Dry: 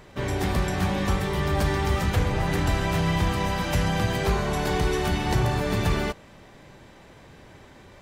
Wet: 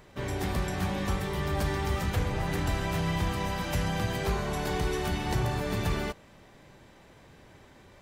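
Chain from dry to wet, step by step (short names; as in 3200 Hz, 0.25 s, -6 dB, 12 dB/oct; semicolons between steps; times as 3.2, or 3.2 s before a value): high shelf 11000 Hz +4.5 dB; gain -5.5 dB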